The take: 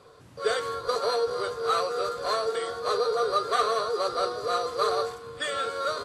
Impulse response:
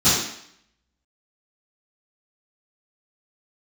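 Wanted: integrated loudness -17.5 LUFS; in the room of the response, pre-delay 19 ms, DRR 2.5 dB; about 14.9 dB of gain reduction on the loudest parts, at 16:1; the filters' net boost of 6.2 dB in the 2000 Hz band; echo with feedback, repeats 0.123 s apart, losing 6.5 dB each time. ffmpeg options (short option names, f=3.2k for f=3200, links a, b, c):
-filter_complex "[0:a]equalizer=f=2k:t=o:g=8.5,acompressor=threshold=-33dB:ratio=16,aecho=1:1:123|246|369|492|615|738:0.473|0.222|0.105|0.0491|0.0231|0.0109,asplit=2[a][b];[1:a]atrim=start_sample=2205,adelay=19[c];[b][c]afir=irnorm=-1:irlink=0,volume=-22dB[d];[a][d]amix=inputs=2:normalize=0,volume=15.5dB"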